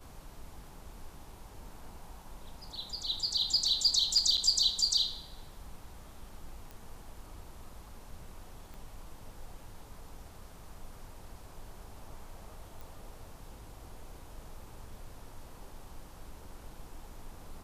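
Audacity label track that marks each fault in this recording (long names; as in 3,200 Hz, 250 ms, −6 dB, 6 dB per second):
4.370000	4.380000	drop-out 7 ms
6.710000	6.710000	click
8.740000	8.740000	click
12.810000	12.810000	click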